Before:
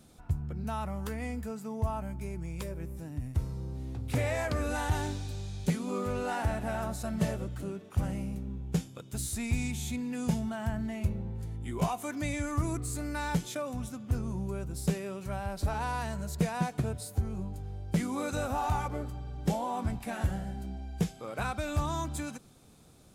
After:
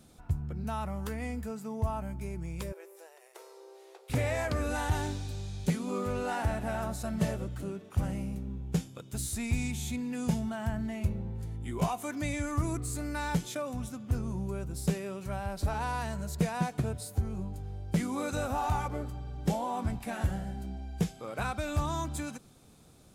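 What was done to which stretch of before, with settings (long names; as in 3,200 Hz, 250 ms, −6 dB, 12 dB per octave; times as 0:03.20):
0:02.72–0:04.10: linear-phase brick-wall high-pass 350 Hz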